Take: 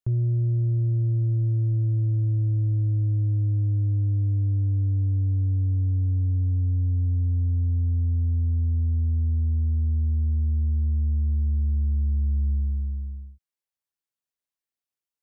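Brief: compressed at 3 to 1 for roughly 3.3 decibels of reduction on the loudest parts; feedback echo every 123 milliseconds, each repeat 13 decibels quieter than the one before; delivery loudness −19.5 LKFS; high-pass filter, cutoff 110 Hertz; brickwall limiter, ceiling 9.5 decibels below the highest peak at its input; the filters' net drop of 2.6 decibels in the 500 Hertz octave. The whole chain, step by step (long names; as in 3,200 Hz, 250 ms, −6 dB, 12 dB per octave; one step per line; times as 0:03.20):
high-pass filter 110 Hz
parametric band 500 Hz −5 dB
downward compressor 3 to 1, threshold −28 dBFS
brickwall limiter −32 dBFS
repeating echo 123 ms, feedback 22%, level −13 dB
level +18 dB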